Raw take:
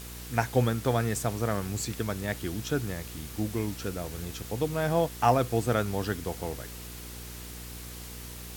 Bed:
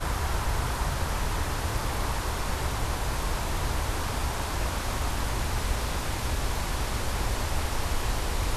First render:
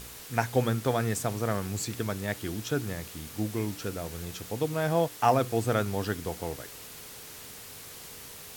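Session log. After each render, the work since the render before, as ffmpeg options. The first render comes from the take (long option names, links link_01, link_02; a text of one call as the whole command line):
ffmpeg -i in.wav -af "bandreject=frequency=60:width_type=h:width=4,bandreject=frequency=120:width_type=h:width=4,bandreject=frequency=180:width_type=h:width=4,bandreject=frequency=240:width_type=h:width=4,bandreject=frequency=300:width_type=h:width=4,bandreject=frequency=360:width_type=h:width=4" out.wav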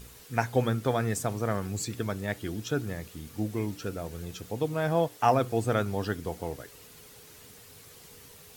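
ffmpeg -i in.wav -af "afftdn=noise_reduction=8:noise_floor=-45" out.wav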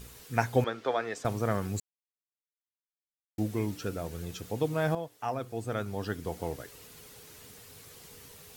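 ffmpeg -i in.wav -filter_complex "[0:a]asettb=1/sr,asplit=3[link_01][link_02][link_03];[link_01]atrim=end=0.644[link_04];[link_02]atrim=start=0.64:end=1.25,asetpts=PTS-STARTPTS,afade=type=in:duration=0.004:curve=qsin,afade=type=out:start_time=0.606:duration=0.004:curve=qsin,acrossover=split=330 5500:gain=0.0631 1 0.0631[link_05][link_06][link_07];[link_05][link_06][link_07]amix=inputs=3:normalize=0[link_08];[link_03]atrim=start=1.246[link_09];[link_04][link_08]acrossfade=duration=0.004:curve1=hsin:curve2=qsin[link_10];[link_10][link_09]acrossfade=duration=0.004:curve1=qsin:curve2=hsin,asplit=4[link_11][link_12][link_13][link_14];[link_11]atrim=end=1.8,asetpts=PTS-STARTPTS,afade=type=out:start_time=1.796:duration=0.004:curve=hsin[link_15];[link_12]atrim=start=1.8:end=3.38,asetpts=PTS-STARTPTS,volume=0[link_16];[link_13]atrim=start=3.38:end=4.95,asetpts=PTS-STARTPTS,afade=type=in:duration=0.004:curve=hsin,afade=type=out:start_time=1.566:duration=0.004:curve=hsin:silence=0.251189[link_17];[link_14]atrim=start=4.95,asetpts=PTS-STARTPTS,afade=type=in:duration=1.48:curve=qua:silence=0.251189[link_18];[link_15][link_16][link_17][link_18]concat=n=4:v=0:a=1" out.wav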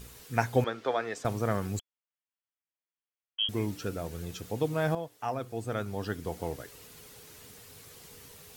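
ffmpeg -i in.wav -filter_complex "[0:a]asettb=1/sr,asplit=3[link_01][link_02][link_03];[link_01]atrim=end=1.794[link_04];[link_02]atrim=start=1.79:end=3.49,asetpts=PTS-STARTPTS,afade=type=in:duration=0.004:curve=qsin,afade=type=out:start_time=1.696:duration=0.004:curve=qsin,lowpass=frequency=2900:width_type=q:width=0.5098,lowpass=frequency=2900:width_type=q:width=0.6013,lowpass=frequency=2900:width_type=q:width=0.9,lowpass=frequency=2900:width_type=q:width=2.563,afreqshift=-3400[link_05];[link_03]atrim=start=3.486[link_06];[link_04][link_05]acrossfade=duration=0.004:curve1=hsin:curve2=qsin[link_07];[link_07][link_06]acrossfade=duration=0.004:curve1=qsin:curve2=hsin" out.wav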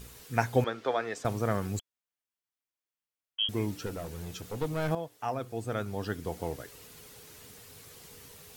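ffmpeg -i in.wav -filter_complex "[0:a]asettb=1/sr,asplit=3[link_01][link_02][link_03];[link_01]atrim=end=3.864[link_04];[link_02]atrim=start=3.86:end=4.91,asetpts=PTS-STARTPTS,afade=type=in:duration=0.004:curve=qsin,afade=type=out:start_time=1.046:duration=0.004:curve=qsin,aeval=exprs='clip(val(0),-1,0.0224)':channel_layout=same[link_05];[link_03]atrim=start=4.906[link_06];[link_04][link_05]acrossfade=duration=0.004:curve1=hsin:curve2=qsin[link_07];[link_07][link_06]acrossfade=duration=0.004:curve1=qsin:curve2=hsin" out.wav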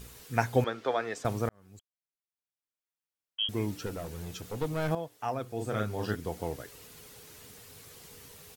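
ffmpeg -i in.wav -filter_complex "[0:a]asplit=3[link_01][link_02][link_03];[link_01]afade=type=out:start_time=5.58:duration=0.02[link_04];[link_02]asplit=2[link_05][link_06];[link_06]adelay=38,volume=-3dB[link_07];[link_05][link_07]amix=inputs=2:normalize=0,afade=type=in:start_time=5.58:duration=0.02,afade=type=out:start_time=6.14:duration=0.02[link_08];[link_03]afade=type=in:start_time=6.14:duration=0.02[link_09];[link_04][link_08][link_09]amix=inputs=3:normalize=0,asplit=2[link_10][link_11];[link_10]atrim=end=1.49,asetpts=PTS-STARTPTS,afade=type=out:start_time=1.486:duration=0.004:curve=hsin[link_12];[link_11]atrim=start=1.49,asetpts=PTS-STARTPTS,afade=type=in:duration=2.24[link_13];[link_12][link_13]concat=n=2:v=0:a=1" out.wav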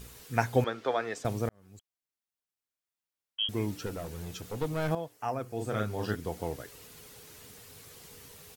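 ffmpeg -i in.wav -filter_complex "[0:a]asettb=1/sr,asplit=3[link_01][link_02][link_03];[link_01]atrim=end=1.194[link_04];[link_02]atrim=start=1.19:end=1.63,asetpts=PTS-STARTPTS,afade=type=in:duration=0.004:curve=qsin,afade=type=out:start_time=0.436:duration=0.004:curve=qsin,equalizer=frequency=1200:width=1.3:gain=-5[link_05];[link_03]atrim=start=1.626[link_06];[link_04][link_05]acrossfade=duration=0.004:curve1=hsin:curve2=qsin[link_07];[link_07][link_06]acrossfade=duration=0.004:curve1=qsin:curve2=hsin,asettb=1/sr,asplit=3[link_08][link_09][link_10];[link_08]atrim=end=5.124[link_11];[link_09]atrim=start=5.12:end=5.53,asetpts=PTS-STARTPTS,afade=type=in:duration=0.004:curve=qsin,afade=type=out:start_time=0.406:duration=0.004:curve=qsin,equalizer=frequency=3600:width_type=o:width=0.3:gain=-10.5[link_12];[link_10]atrim=start=5.526[link_13];[link_11][link_12]acrossfade=duration=0.004:curve1=hsin:curve2=qsin[link_14];[link_14][link_13]acrossfade=duration=0.004:curve1=qsin:curve2=hsin" out.wav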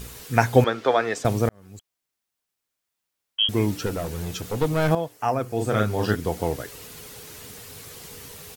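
ffmpeg -i in.wav -af "volume=9.5dB,alimiter=limit=-1dB:level=0:latency=1" out.wav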